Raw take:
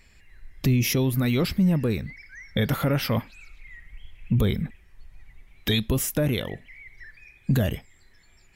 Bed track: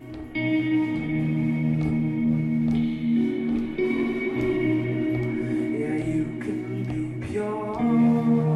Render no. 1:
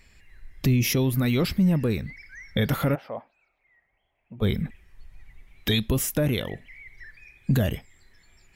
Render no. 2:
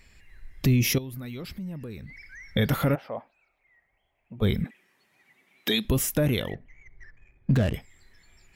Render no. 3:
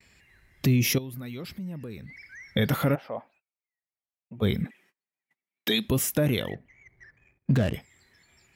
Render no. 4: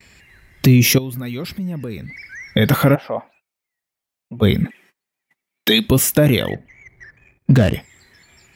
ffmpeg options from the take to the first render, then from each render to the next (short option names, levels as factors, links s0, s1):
-filter_complex "[0:a]asplit=3[s0][s1][s2];[s0]afade=t=out:st=2.94:d=0.02[s3];[s1]bandpass=f=690:t=q:w=2.9,afade=t=in:st=2.94:d=0.02,afade=t=out:st=4.41:d=0.02[s4];[s2]afade=t=in:st=4.41:d=0.02[s5];[s3][s4][s5]amix=inputs=3:normalize=0"
-filter_complex "[0:a]asettb=1/sr,asplit=3[s0][s1][s2];[s0]atrim=end=0.984[s3];[s1]atrim=start=0.98:end=2.48,asetpts=PTS-STARTPTS,afade=t=in:d=0.004:c=qsin,afade=t=out:st=1.496:d=0.004:c=qsin,acompressor=threshold=0.00891:ratio=2.5:attack=3.2:release=140:knee=1:detection=peak[s4];[s2]atrim=start=2.476[s5];[s3][s4]acrossfade=d=0.004:c1=hsin:c2=qsin[s6];[s6][s5]acrossfade=d=0.004:c1=qsin:c2=hsin,asettb=1/sr,asplit=3[s7][s8][s9];[s7]atrim=end=4.644[s10];[s8]atrim=start=4.64:end=5.85,asetpts=PTS-STARTPTS,afade=t=in:d=0.004:c=qsin,afade=t=out:st=1.206:d=0.004:c=qsin,highpass=f=210:w=0.5412,highpass=f=210:w=1.3066[s11];[s9]atrim=start=5.846[s12];[s10][s11]acrossfade=d=0.004:c1=hsin:c2=qsin[s13];[s13][s12]acrossfade=d=0.004:c1=qsin:c2=hsin,asettb=1/sr,asplit=3[s14][s15][s16];[s14]atrim=end=6.544[s17];[s15]atrim=start=6.54:end=7.74,asetpts=PTS-STARTPTS,afade=t=in:d=0.004:c=qsin,afade=t=out:st=1.196:d=0.004:c=qsin,adynamicsmooth=sensitivity=6.5:basefreq=760[s18];[s16]atrim=start=7.736[s19];[s17][s18]acrossfade=d=0.004:c1=hsin:c2=qsin[s20];[s20][s19]acrossfade=d=0.004:c1=qsin:c2=hsin"
-af "agate=range=0.0251:threshold=0.00141:ratio=16:detection=peak,highpass=91"
-af "volume=3.35,alimiter=limit=0.708:level=0:latency=1"